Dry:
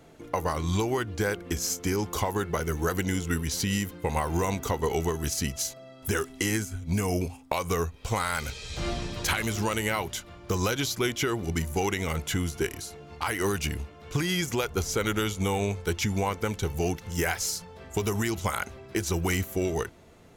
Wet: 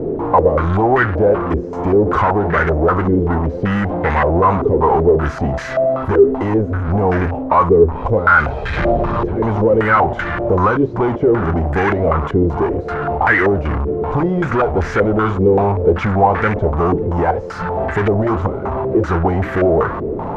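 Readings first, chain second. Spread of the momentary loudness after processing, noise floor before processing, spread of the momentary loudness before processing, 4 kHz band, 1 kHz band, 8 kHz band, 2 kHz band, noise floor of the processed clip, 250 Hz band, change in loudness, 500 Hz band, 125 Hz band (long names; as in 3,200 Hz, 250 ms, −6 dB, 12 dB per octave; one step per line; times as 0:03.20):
6 LU, −50 dBFS, 5 LU, can't be measured, +16.5 dB, below −15 dB, +12.5 dB, −25 dBFS, +13.0 dB, +13.5 dB, +16.5 dB, +12.0 dB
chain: flanger 2 Hz, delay 7.5 ms, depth 3.6 ms, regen −81%
power curve on the samples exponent 0.35
low-pass on a step sequencer 5.2 Hz 410–1,700 Hz
level +7 dB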